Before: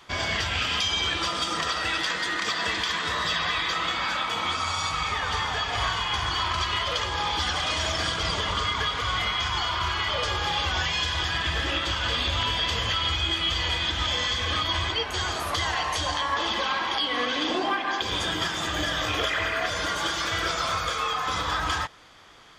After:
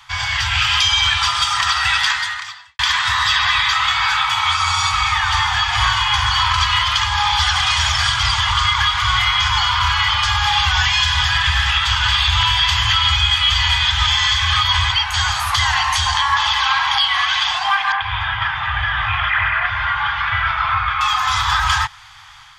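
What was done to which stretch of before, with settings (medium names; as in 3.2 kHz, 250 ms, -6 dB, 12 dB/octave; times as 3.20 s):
2.10–2.79 s: fade out quadratic
17.92–21.01 s: low-pass 2.6 kHz 24 dB/octave
whole clip: Chebyshev band-stop 130–820 Hz, order 4; level rider gain up to 4 dB; trim +7 dB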